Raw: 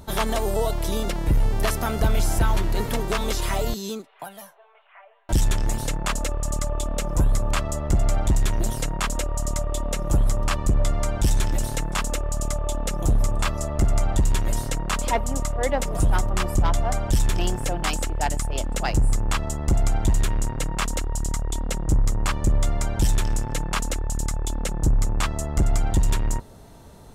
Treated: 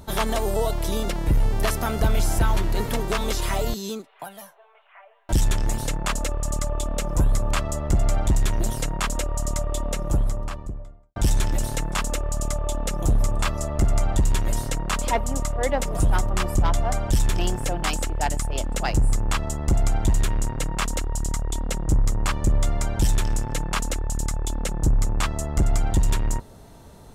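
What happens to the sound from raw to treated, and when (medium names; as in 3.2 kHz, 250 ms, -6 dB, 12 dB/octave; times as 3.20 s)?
9.78–11.16 s: studio fade out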